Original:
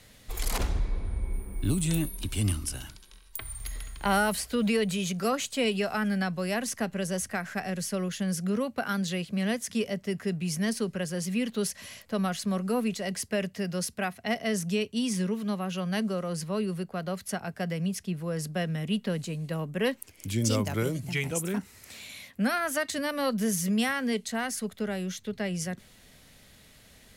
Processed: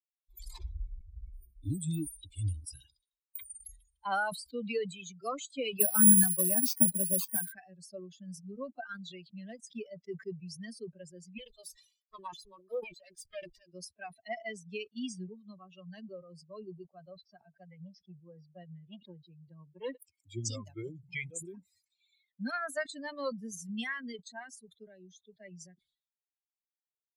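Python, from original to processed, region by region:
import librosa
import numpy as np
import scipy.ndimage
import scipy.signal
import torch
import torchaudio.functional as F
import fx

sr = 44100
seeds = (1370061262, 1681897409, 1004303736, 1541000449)

y = fx.chain(x, sr, fx.highpass_res(hz=210.0, q=2.5),
    fx.resample_bad(factor=4, down='none', up='zero_stuff'),
    fx.band_squash(depth_pct=40), at=(5.8, 7.52))
y = fx.chain(y, sr, fx.lower_of_two(delay_ms=1.7),
    fx.high_shelf(hz=9600.0, db=7.0),
    fx.doppler_dist(depth_ms=0.26), at=(11.38, 13.72))
y = fx.chain(y, sr, fx.steep_lowpass(hz=5500.0, slope=36),
    fx.echo_single(ms=87, db=-21.0),
    fx.transformer_sat(knee_hz=650.0), at=(17.17, 19.97))
y = fx.bin_expand(y, sr, power=3.0)
y = scipy.signal.sosfilt(scipy.signal.butter(2, 50.0, 'highpass', fs=sr, output='sos'), y)
y = fx.sustainer(y, sr, db_per_s=130.0)
y = y * 10.0 ** (-1.5 / 20.0)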